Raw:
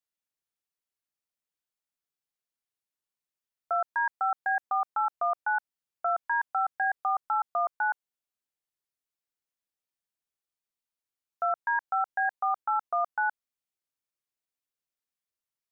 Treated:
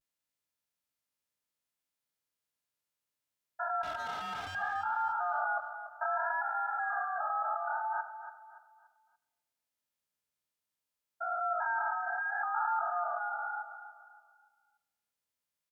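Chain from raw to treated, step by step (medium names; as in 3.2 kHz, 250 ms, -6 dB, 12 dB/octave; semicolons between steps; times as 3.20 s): spectrogram pixelated in time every 400 ms; in parallel at -2.5 dB: peak limiter -30.5 dBFS, peak gain reduction 7.5 dB; 3.84–4.54 s: on the sum: hard clipper -35.5 dBFS, distortion -15 dB; vibrato 0.65 Hz 72 cents; comb of notches 380 Hz; on a send: feedback delay 287 ms, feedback 36%, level -11 dB; on the sum: simulated room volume 2100 m³, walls mixed, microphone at 0.35 m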